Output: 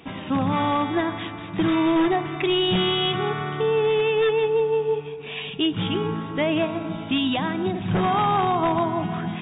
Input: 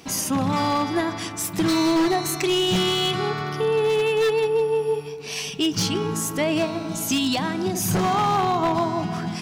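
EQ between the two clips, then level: brick-wall FIR low-pass 3.8 kHz; 0.0 dB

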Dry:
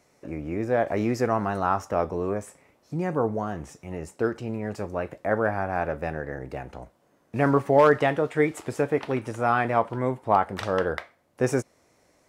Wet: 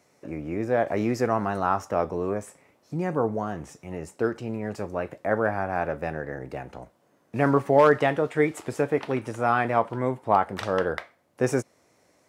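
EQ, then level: high-pass 86 Hz; 0.0 dB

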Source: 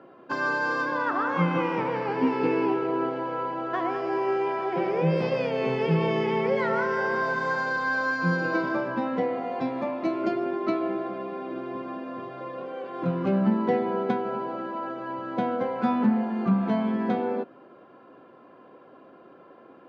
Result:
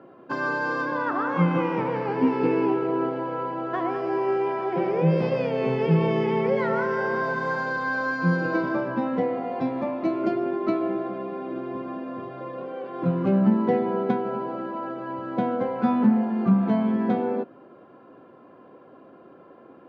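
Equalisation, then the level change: tilt EQ -1.5 dB/octave; 0.0 dB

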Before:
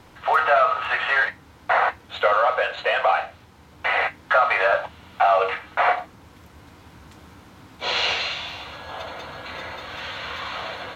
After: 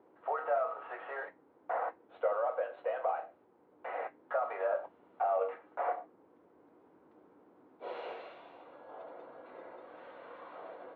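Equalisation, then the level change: ladder band-pass 460 Hz, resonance 40%; 0.0 dB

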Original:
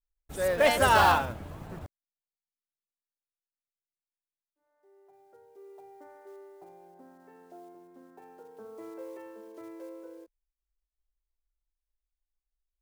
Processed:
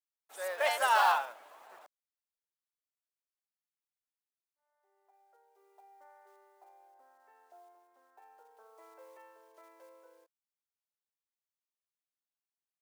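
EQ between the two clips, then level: ladder high-pass 580 Hz, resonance 25%; 0.0 dB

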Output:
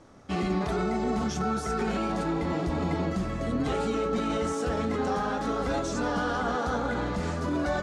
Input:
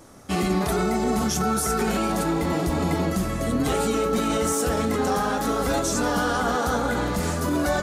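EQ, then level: distance through air 110 m; -4.5 dB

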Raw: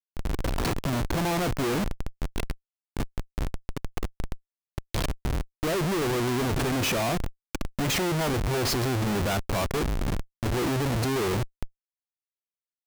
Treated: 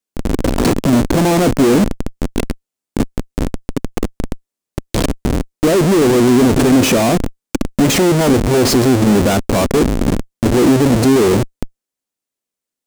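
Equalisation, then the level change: graphic EQ 250/500/8000 Hz +10/+5/+5 dB; +8.5 dB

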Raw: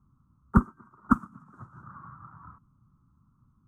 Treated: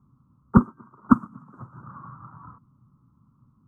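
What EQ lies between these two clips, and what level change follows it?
graphic EQ 125/250/500/1000 Hz +9/+8/+11/+8 dB; -5.0 dB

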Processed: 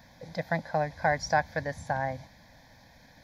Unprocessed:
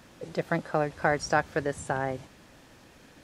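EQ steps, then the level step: static phaser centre 1.9 kHz, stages 8; +1.5 dB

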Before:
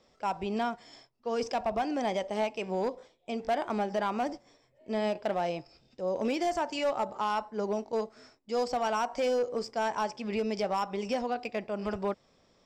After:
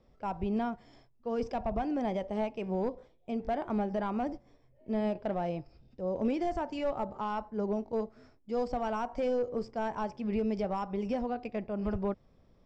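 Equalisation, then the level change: RIAA curve playback; -5.0 dB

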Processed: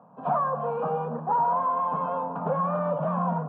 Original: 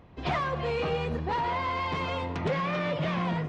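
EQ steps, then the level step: steep high-pass 170 Hz 36 dB/octave; low-pass 1.5 kHz 24 dB/octave; static phaser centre 840 Hz, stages 4; +7.0 dB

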